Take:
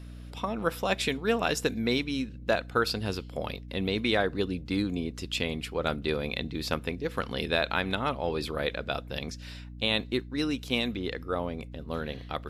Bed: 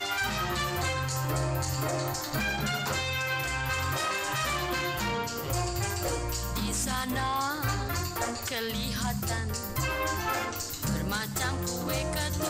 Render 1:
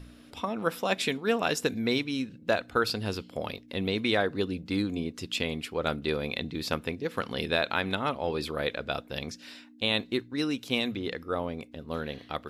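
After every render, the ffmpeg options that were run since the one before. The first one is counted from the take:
-af "bandreject=f=60:t=h:w=4,bandreject=f=120:t=h:w=4,bandreject=f=180:t=h:w=4"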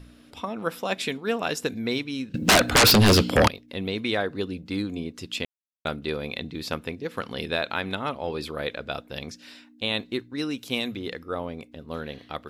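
-filter_complex "[0:a]asettb=1/sr,asplit=3[a][b][c];[a]atrim=end=2.344[d];[b]atrim=start=2.34:end=3.48,asetpts=PTS-STARTPTS,afade=t=in:d=0.004:c=qsin,afade=t=out:st=1.136:d=0.004:c=qsin,aeval=exprs='0.251*sin(PI/2*7.94*val(0)/0.251)':c=same[e];[c]atrim=start=3.476[f];[d][e]acrossfade=d=0.004:c1=hsin:c2=qsin[g];[g][f]acrossfade=d=0.004:c1=qsin:c2=hsin,asettb=1/sr,asplit=3[h][i][j];[h]atrim=end=10.574[k];[i]atrim=start=10.57:end=11.19,asetpts=PTS-STARTPTS,afade=t=in:d=0.004:c=qsin,afade=t=out:st=0.616:d=0.004:c=qsin,highshelf=f=7.9k:g=7[l];[j]atrim=start=11.186[m];[k][l]acrossfade=d=0.004:c1=hsin:c2=qsin[n];[n][m]acrossfade=d=0.004:c1=qsin:c2=hsin,asplit=3[o][p][q];[o]atrim=end=5.45,asetpts=PTS-STARTPTS,afade=t=out:st=5.446:d=0.004:c=hsin[r];[p]atrim=start=5.45:end=5.85,asetpts=PTS-STARTPTS,volume=0[s];[q]atrim=start=5.85,asetpts=PTS-STARTPTS,afade=t=in:d=0.004:c=hsin[t];[r][s][t]concat=n=3:v=0:a=1"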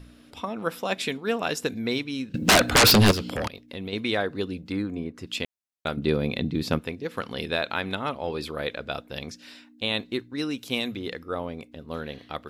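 -filter_complex "[0:a]asettb=1/sr,asplit=3[a][b][c];[a]atrim=end=3.114[d];[b]atrim=start=3.11:end=3.93,asetpts=PTS-STARTPTS,afade=t=in:d=0.004:c=qsin,afade=t=out:st=0.816:d=0.004:c=qsin,acompressor=threshold=-32dB:ratio=2.5:attack=3.2:release=140:knee=1:detection=peak[e];[c]atrim=start=3.926[f];[d][e]acrossfade=d=0.004:c1=hsin:c2=qsin[g];[g][f]acrossfade=d=0.004:c1=qsin:c2=hsin,asettb=1/sr,asplit=3[h][i][j];[h]atrim=end=4.724[k];[i]atrim=start=4.72:end=5.27,asetpts=PTS-STARTPTS,afade=t=in:d=0.004:c=qsin,afade=t=out:st=0.546:d=0.004:c=qsin,highshelf=f=2.4k:t=q:w=1.5:g=-8[l];[j]atrim=start=5.266[m];[k][l]acrossfade=d=0.004:c1=hsin:c2=qsin[n];[n][m]acrossfade=d=0.004:c1=qsin:c2=hsin,asettb=1/sr,asplit=3[o][p][q];[o]atrim=end=5.974[r];[p]atrim=start=5.97:end=6.79,asetpts=PTS-STARTPTS,afade=t=in:d=0.004:c=qsin,afade=t=out:st=0.816:d=0.004:c=qsin,equalizer=f=160:t=o:w=2.9:g=10[s];[q]atrim=start=6.786[t];[r][s]acrossfade=d=0.004:c1=hsin:c2=qsin[u];[u][t]acrossfade=d=0.004:c1=qsin:c2=hsin"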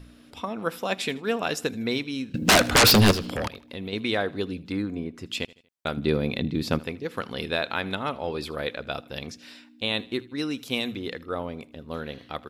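-af "aecho=1:1:79|158|237:0.0841|0.0353|0.0148"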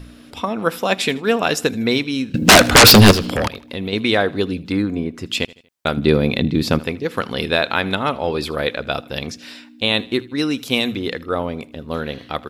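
-af "volume=9dB,alimiter=limit=-1dB:level=0:latency=1"

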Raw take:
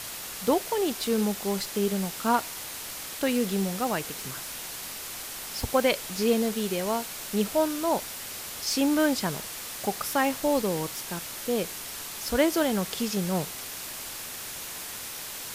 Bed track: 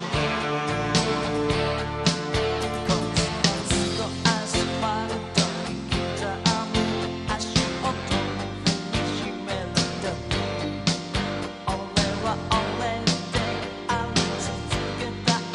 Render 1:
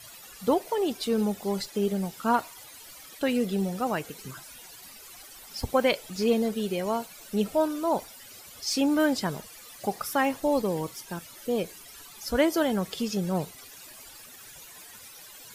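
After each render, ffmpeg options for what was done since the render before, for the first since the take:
-af "afftdn=nr=15:nf=-38"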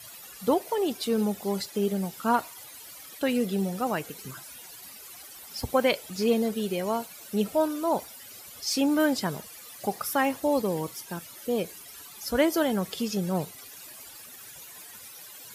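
-af "highpass=63,equalizer=f=12k:t=o:w=0.51:g=4.5"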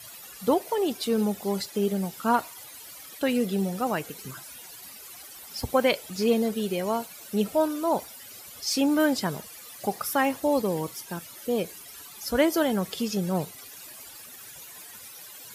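-af "volume=1dB"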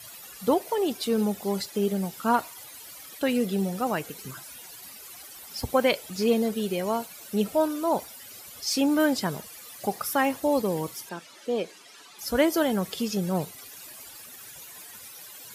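-filter_complex "[0:a]asettb=1/sr,asplit=3[a][b][c];[a]atrim=end=11.094[d];[b]atrim=start=11.09:end=12.19,asetpts=PTS-STARTPTS,afade=t=in:d=0.004:c=qsin,afade=t=out:st=1.096:d=0.004:c=qsin,highpass=250,lowpass=5.8k[e];[c]atrim=start=12.186[f];[d][e]acrossfade=d=0.004:c1=hsin:c2=qsin[g];[g][f]acrossfade=d=0.004:c1=qsin:c2=hsin"

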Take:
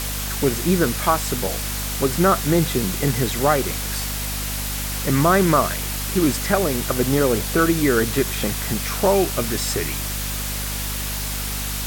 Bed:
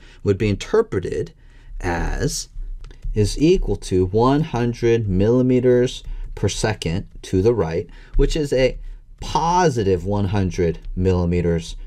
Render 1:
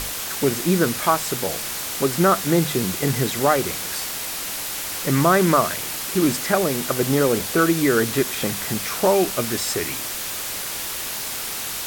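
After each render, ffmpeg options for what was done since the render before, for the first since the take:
-af "bandreject=f=50:t=h:w=6,bandreject=f=100:t=h:w=6,bandreject=f=150:t=h:w=6,bandreject=f=200:t=h:w=6,bandreject=f=250:t=h:w=6"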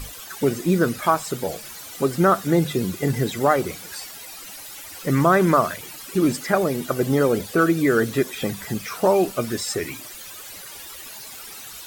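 -af "afftdn=nr=14:nf=-29"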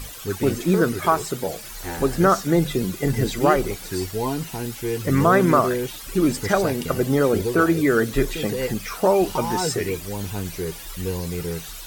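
-filter_complex "[1:a]volume=-9.5dB[a];[0:a][a]amix=inputs=2:normalize=0"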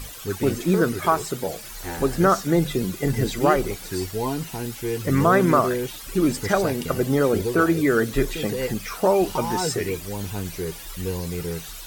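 -af "volume=-1dB"

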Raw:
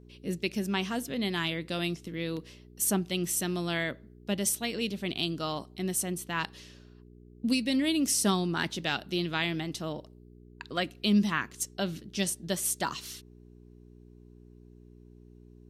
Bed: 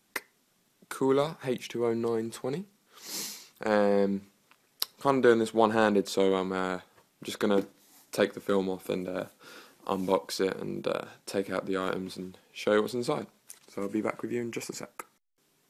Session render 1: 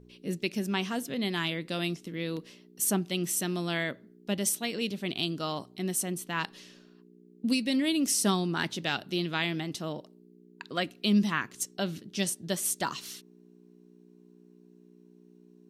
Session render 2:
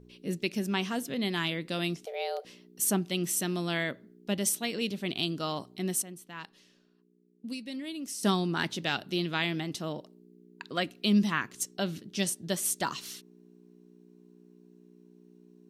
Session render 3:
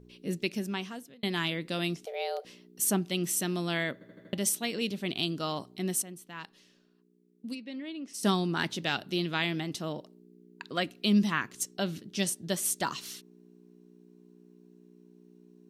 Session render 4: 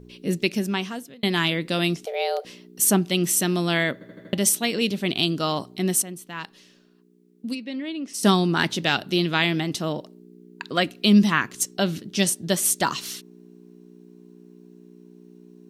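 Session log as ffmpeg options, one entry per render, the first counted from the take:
-af "bandreject=f=60:t=h:w=4,bandreject=f=120:t=h:w=4"
-filter_complex "[0:a]asettb=1/sr,asplit=3[a][b][c];[a]atrim=end=2.054[d];[b]atrim=start=2.05:end=2.45,asetpts=PTS-STARTPTS,afade=t=in:d=0.004:c=qsin,afade=t=out:st=0.396:d=0.004:c=qsin,afreqshift=270[e];[c]atrim=start=2.446[f];[d][e]acrossfade=d=0.004:c1=hsin:c2=qsin[g];[g][f]acrossfade=d=0.004:c1=qsin:c2=hsin,asplit=3[h][i][j];[h]atrim=end=6.022[k];[i]atrim=start=6.018:end=8.232,asetpts=PTS-STARTPTS,volume=-11dB[l];[j]atrim=start=8.228[m];[k][l]acrossfade=d=0.004:c1=hsin:c2=hsin[n];[n][m]acrossfade=d=0.004:c1=hsin:c2=hsin"
-filter_complex "[0:a]asplit=3[a][b][c];[a]afade=t=out:st=7.54:d=0.02[d];[b]highpass=210,lowpass=3k,afade=t=in:st=7.54:d=0.02,afade=t=out:st=8.13:d=0.02[e];[c]afade=t=in:st=8.13:d=0.02[f];[d][e][f]amix=inputs=3:normalize=0,asplit=7[g][h][i][j][k][l][m];[g]atrim=end=1.23,asetpts=PTS-STARTPTS,afade=t=out:st=0.44:d=0.79[n];[h]atrim=start=1.23:end=4.012,asetpts=PTS-STARTPTS,afade=t=in:d=0.004:c=hsin[o];[i]atrim=start=3.928:end=4.012[p];[j]atrim=start=3.928:end=4.012[q];[k]atrim=start=3.928:end=4.012[r];[l]atrim=start=3.928:end=4.012[s];[m]atrim=start=4.328[t];[n][o]concat=n=2:v=0:a=1[u];[u][p]acrossfade=d=0.004:c1=hsin:c2=hsin[v];[v][q]acrossfade=d=0.004:c1=hsin:c2=hsin[w];[w][r]acrossfade=d=0.004:c1=hsin:c2=hsin[x];[x][s]acrossfade=d=0.004:c1=hsin:c2=hsin[y];[y][t]acrossfade=d=0.004:c1=hsin:c2=hsin"
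-af "volume=8.5dB"

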